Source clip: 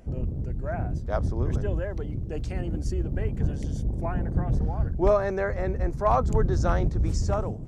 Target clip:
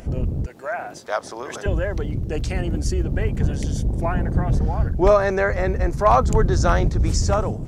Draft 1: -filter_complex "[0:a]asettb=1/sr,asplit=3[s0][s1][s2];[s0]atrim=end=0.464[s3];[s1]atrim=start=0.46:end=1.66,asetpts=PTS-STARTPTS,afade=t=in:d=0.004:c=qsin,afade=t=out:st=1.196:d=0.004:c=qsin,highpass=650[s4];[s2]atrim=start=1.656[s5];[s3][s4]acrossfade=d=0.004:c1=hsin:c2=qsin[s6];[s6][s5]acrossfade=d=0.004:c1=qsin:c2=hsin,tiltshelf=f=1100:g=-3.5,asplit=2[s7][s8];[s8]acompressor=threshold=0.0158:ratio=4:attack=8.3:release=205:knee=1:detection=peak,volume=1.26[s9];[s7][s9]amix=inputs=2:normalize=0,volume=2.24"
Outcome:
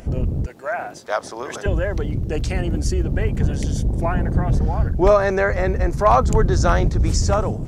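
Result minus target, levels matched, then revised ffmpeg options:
compression: peak gain reduction -6 dB
-filter_complex "[0:a]asettb=1/sr,asplit=3[s0][s1][s2];[s0]atrim=end=0.464[s3];[s1]atrim=start=0.46:end=1.66,asetpts=PTS-STARTPTS,afade=t=in:d=0.004:c=qsin,afade=t=out:st=1.196:d=0.004:c=qsin,highpass=650[s4];[s2]atrim=start=1.656[s5];[s3][s4]acrossfade=d=0.004:c1=hsin:c2=qsin[s6];[s6][s5]acrossfade=d=0.004:c1=qsin:c2=hsin,tiltshelf=f=1100:g=-3.5,asplit=2[s7][s8];[s8]acompressor=threshold=0.00631:ratio=4:attack=8.3:release=205:knee=1:detection=peak,volume=1.26[s9];[s7][s9]amix=inputs=2:normalize=0,volume=2.24"

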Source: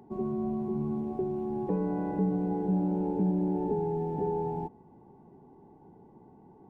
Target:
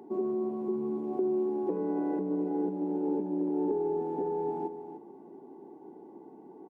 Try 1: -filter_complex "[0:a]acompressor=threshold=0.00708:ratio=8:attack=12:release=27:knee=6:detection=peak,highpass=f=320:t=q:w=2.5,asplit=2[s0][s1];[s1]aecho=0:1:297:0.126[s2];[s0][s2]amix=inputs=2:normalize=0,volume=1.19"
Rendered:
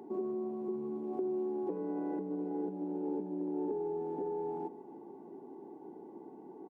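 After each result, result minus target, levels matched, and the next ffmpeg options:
compression: peak gain reduction +5.5 dB; echo-to-direct -7 dB
-filter_complex "[0:a]acompressor=threshold=0.015:ratio=8:attack=12:release=27:knee=6:detection=peak,highpass=f=320:t=q:w=2.5,asplit=2[s0][s1];[s1]aecho=0:1:297:0.126[s2];[s0][s2]amix=inputs=2:normalize=0,volume=1.19"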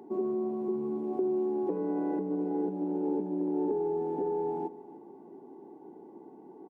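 echo-to-direct -7 dB
-filter_complex "[0:a]acompressor=threshold=0.015:ratio=8:attack=12:release=27:knee=6:detection=peak,highpass=f=320:t=q:w=2.5,asplit=2[s0][s1];[s1]aecho=0:1:297:0.282[s2];[s0][s2]amix=inputs=2:normalize=0,volume=1.19"

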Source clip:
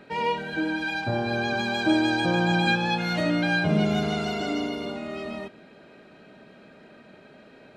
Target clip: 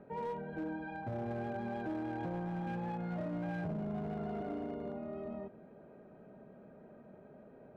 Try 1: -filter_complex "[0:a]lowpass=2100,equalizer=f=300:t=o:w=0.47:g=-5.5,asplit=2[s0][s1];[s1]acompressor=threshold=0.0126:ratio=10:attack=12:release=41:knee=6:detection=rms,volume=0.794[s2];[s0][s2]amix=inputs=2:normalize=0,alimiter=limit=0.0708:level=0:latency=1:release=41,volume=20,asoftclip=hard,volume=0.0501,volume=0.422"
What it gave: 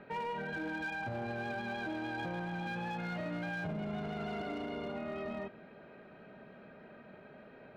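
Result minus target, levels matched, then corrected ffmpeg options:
2 kHz band +9.0 dB; compression: peak gain reduction -9 dB
-filter_complex "[0:a]lowpass=760,equalizer=f=300:t=o:w=0.47:g=-5.5,asplit=2[s0][s1];[s1]acompressor=threshold=0.00398:ratio=10:attack=12:release=41:knee=6:detection=rms,volume=0.794[s2];[s0][s2]amix=inputs=2:normalize=0,alimiter=limit=0.0708:level=0:latency=1:release=41,volume=20,asoftclip=hard,volume=0.0501,volume=0.422"

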